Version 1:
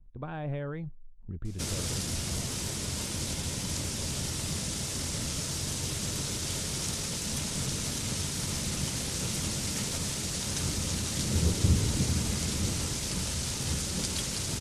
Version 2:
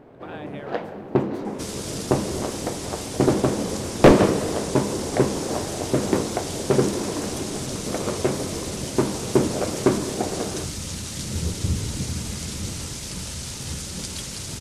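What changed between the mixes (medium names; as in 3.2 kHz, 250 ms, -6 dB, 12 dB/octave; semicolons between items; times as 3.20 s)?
speech: add tilt EQ +4 dB/octave; first sound: unmuted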